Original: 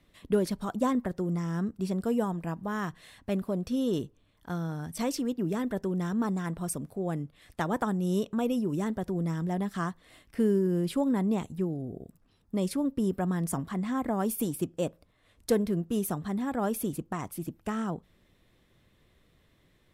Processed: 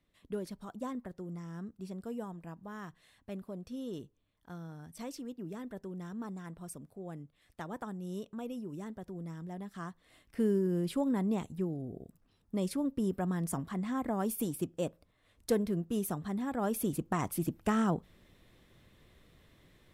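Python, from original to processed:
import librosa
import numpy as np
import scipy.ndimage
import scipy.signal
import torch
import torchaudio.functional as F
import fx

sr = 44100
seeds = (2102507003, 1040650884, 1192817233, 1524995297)

y = fx.gain(x, sr, db=fx.line((9.68, -12.0), (10.44, -4.0), (16.58, -4.0), (17.25, 3.0)))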